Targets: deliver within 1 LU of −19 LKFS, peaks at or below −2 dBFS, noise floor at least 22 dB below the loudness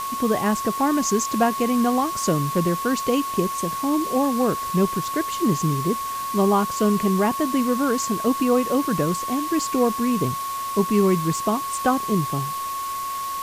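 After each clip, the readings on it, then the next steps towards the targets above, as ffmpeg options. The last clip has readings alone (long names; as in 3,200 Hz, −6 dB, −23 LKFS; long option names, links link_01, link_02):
interfering tone 1,100 Hz; level of the tone −26 dBFS; background noise floor −29 dBFS; target noise floor −44 dBFS; integrated loudness −22.0 LKFS; sample peak −7.5 dBFS; target loudness −19.0 LKFS
→ -af "bandreject=frequency=1100:width=30"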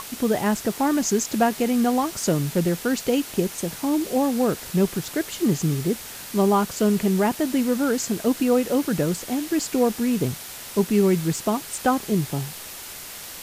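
interfering tone none found; background noise floor −38 dBFS; target noise floor −45 dBFS
→ -af "afftdn=noise_reduction=7:noise_floor=-38"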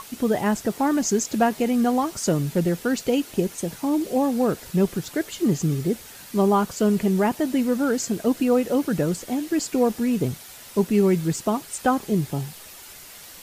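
background noise floor −43 dBFS; target noise floor −45 dBFS
→ -af "afftdn=noise_reduction=6:noise_floor=-43"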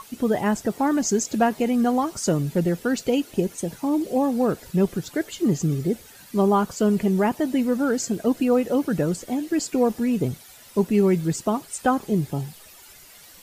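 background noise floor −48 dBFS; integrated loudness −23.5 LKFS; sample peak −7.5 dBFS; target loudness −19.0 LKFS
→ -af "volume=4.5dB"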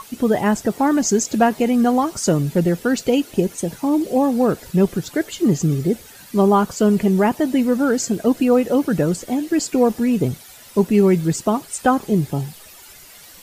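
integrated loudness −19.0 LKFS; sample peak −3.0 dBFS; background noise floor −43 dBFS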